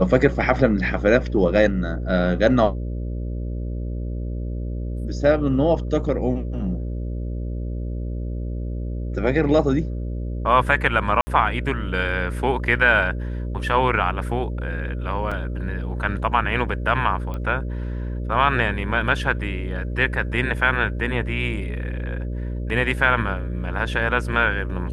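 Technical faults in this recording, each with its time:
mains buzz 60 Hz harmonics 10 −27 dBFS
0:11.21–0:11.27: drop-out 60 ms
0:15.31–0:15.32: drop-out 5.6 ms
0:17.34: click −19 dBFS

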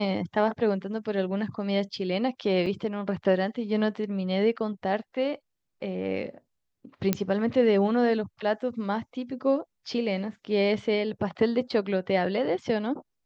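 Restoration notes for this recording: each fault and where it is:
0:02.66: drop-out 4.8 ms
0:07.13: click −9 dBFS

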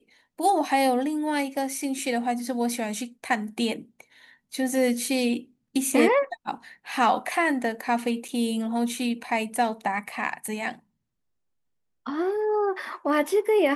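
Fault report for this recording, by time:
0:08.28–0:08.29: drop-out 6.1 ms

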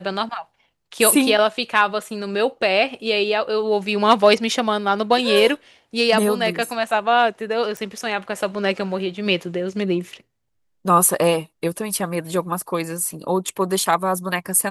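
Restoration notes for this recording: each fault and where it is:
0:07.77: click

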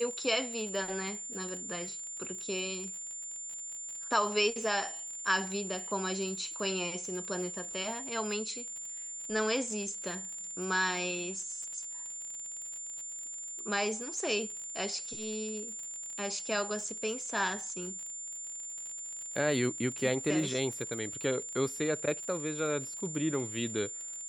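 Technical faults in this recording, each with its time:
surface crackle 44 per second −39 dBFS
whistle 7,200 Hz −39 dBFS

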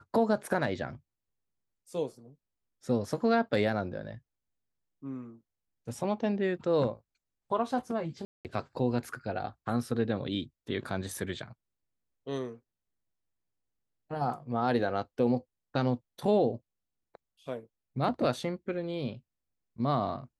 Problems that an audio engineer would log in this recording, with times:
0:08.25–0:08.45: drop-out 198 ms

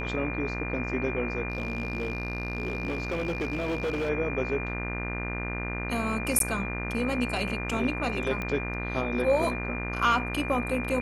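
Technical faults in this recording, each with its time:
mains buzz 60 Hz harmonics 39 −34 dBFS
whistle 2,400 Hz −35 dBFS
0:01.50–0:04.10: clipping −25.5 dBFS
0:06.39–0:06.40: drop-out 12 ms
0:08.42: click −19 dBFS

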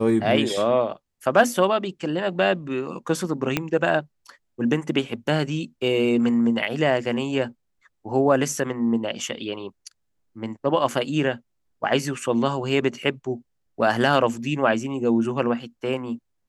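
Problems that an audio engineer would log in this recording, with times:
0:03.57: click −7 dBFS

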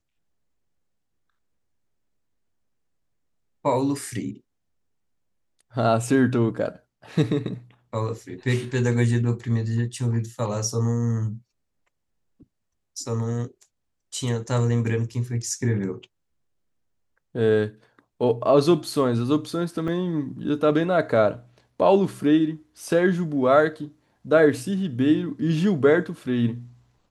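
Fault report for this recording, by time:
0:19.88: drop-out 2.7 ms

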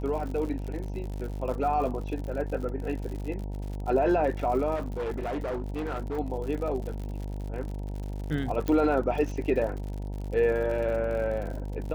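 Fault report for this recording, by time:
mains buzz 50 Hz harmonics 19 −34 dBFS
surface crackle 76 per second −35 dBFS
0:04.75–0:06.19: clipping −28 dBFS
0:08.68: click −16 dBFS

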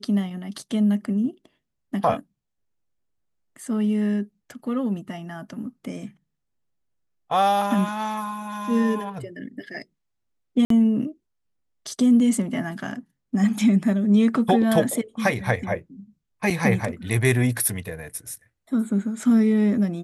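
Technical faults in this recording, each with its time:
0:10.65–0:10.70: drop-out 53 ms
0:16.50–0:16.51: drop-out 5.1 ms

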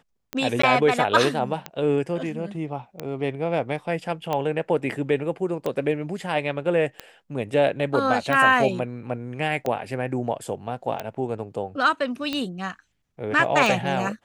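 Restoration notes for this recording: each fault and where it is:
scratch tick 45 rpm −13 dBFS
0:00.62–0:00.63: drop-out 14 ms

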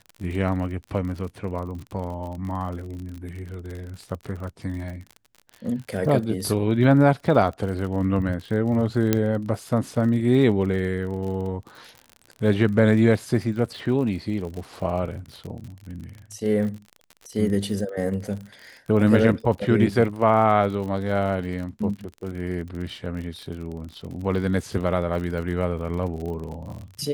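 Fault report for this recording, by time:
surface crackle 47 per second −32 dBFS
0:09.13: click −5 dBFS

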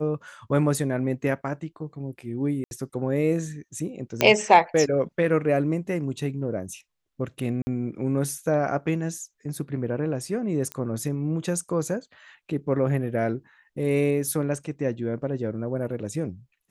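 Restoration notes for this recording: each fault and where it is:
0:02.64–0:02.71: drop-out 71 ms
0:04.21: click −5 dBFS
0:07.62–0:07.67: drop-out 50 ms
0:10.72: click −16 dBFS

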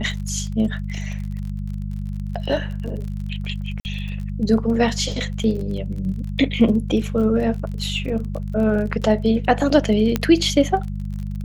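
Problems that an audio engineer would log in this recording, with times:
surface crackle 34 per second −30 dBFS
mains hum 50 Hz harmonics 4 −27 dBFS
0:03.80–0:03.85: drop-out 49 ms
0:10.16: click −6 dBFS

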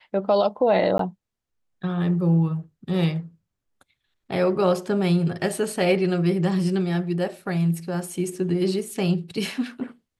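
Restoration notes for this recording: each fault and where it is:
0:00.98–0:00.99: drop-out 13 ms

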